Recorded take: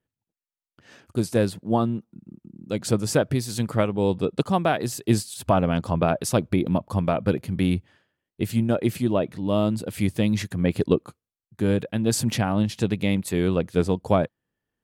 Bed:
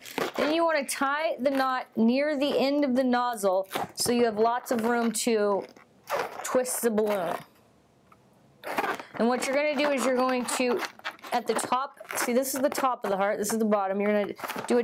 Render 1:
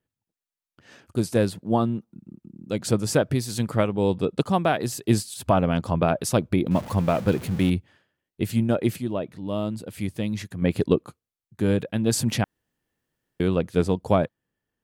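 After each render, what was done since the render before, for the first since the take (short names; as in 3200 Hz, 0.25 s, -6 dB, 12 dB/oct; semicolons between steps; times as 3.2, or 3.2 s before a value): 6.71–7.7 zero-crossing step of -33 dBFS; 8.96–10.62 gain -5.5 dB; 12.44–13.4 room tone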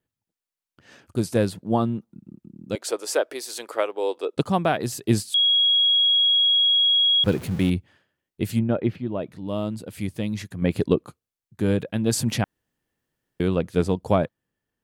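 2.75–4.37 inverse Chebyshev high-pass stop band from 190 Hz; 5.34–7.24 bleep 3310 Hz -15.5 dBFS; 8.59–9.19 air absorption 320 m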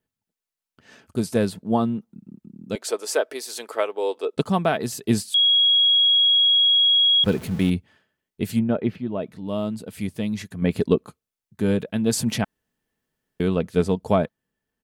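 comb 4.6 ms, depth 32%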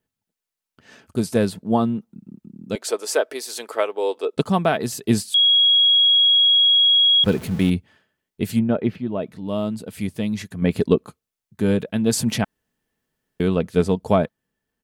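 gain +2 dB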